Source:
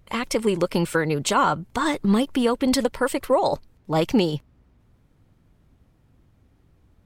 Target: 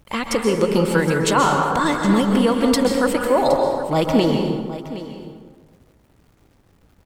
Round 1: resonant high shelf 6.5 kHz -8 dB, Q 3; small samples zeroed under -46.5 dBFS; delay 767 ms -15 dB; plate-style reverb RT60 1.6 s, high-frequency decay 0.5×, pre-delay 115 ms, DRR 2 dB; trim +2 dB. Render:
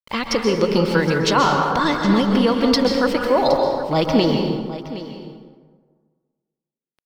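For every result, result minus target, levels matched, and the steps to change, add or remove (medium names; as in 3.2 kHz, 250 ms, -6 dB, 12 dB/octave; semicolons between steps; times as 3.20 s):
8 kHz band -5.0 dB; small samples zeroed: distortion +6 dB
remove: resonant high shelf 6.5 kHz -8 dB, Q 3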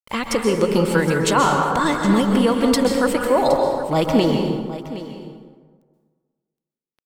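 small samples zeroed: distortion +7 dB
change: small samples zeroed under -55.5 dBFS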